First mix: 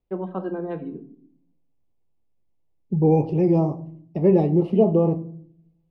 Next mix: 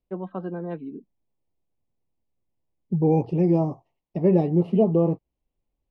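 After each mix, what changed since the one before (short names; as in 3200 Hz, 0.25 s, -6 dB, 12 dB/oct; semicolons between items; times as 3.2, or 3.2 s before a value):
reverb: off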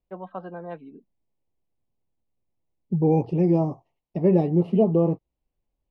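first voice: add resonant low shelf 480 Hz -7 dB, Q 1.5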